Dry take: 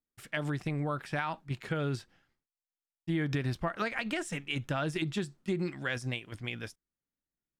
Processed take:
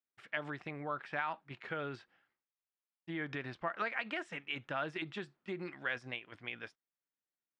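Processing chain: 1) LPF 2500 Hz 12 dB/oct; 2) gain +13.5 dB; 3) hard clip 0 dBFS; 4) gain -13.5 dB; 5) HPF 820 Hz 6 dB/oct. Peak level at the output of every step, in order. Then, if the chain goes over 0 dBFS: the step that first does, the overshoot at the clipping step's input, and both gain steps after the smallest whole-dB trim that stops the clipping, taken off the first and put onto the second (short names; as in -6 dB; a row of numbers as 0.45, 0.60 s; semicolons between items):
-19.5, -6.0, -6.0, -19.5, -20.5 dBFS; no overload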